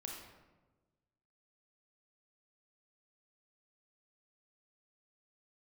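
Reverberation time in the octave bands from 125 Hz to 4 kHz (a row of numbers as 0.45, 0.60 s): 1.7, 1.5, 1.4, 1.1, 0.90, 0.70 s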